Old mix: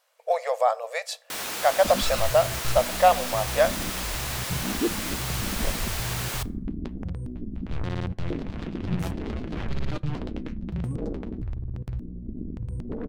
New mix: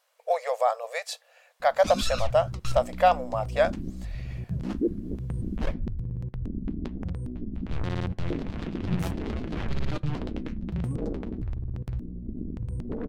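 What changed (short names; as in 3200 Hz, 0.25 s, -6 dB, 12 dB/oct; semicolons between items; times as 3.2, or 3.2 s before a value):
speech: send off; first sound: muted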